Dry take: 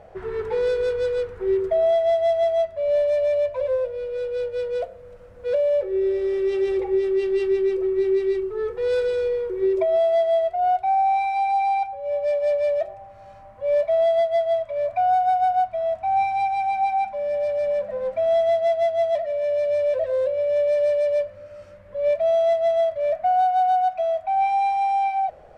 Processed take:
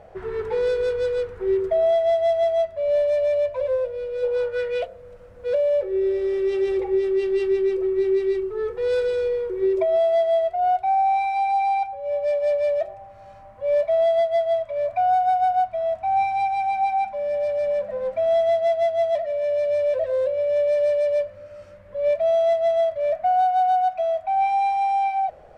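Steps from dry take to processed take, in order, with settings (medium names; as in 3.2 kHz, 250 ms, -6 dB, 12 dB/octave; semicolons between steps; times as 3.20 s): 4.22–4.85 s: peaking EQ 660 Hz -> 3 kHz +12.5 dB 1.1 oct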